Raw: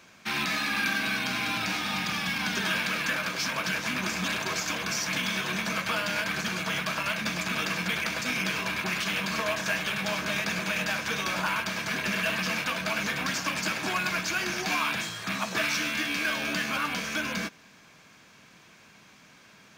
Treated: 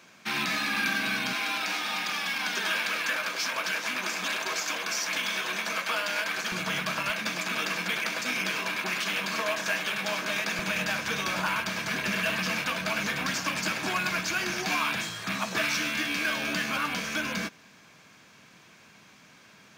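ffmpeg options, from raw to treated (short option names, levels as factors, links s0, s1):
-af "asetnsamples=n=441:p=0,asendcmd='1.33 highpass f 370;6.52 highpass f 110;7.1 highpass f 240;10.59 highpass f 63',highpass=130"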